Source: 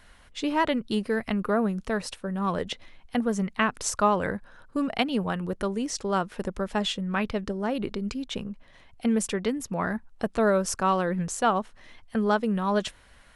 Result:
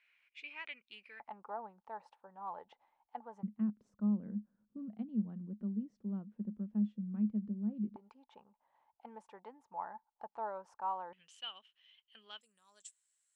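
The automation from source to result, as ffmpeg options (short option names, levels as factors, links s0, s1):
-af "asetnsamples=n=441:p=0,asendcmd='1.2 bandpass f 860;3.43 bandpass f 210;7.96 bandpass f 870;11.13 bandpass f 3000;12.41 bandpass f 7700',bandpass=f=2400:t=q:w=13:csg=0"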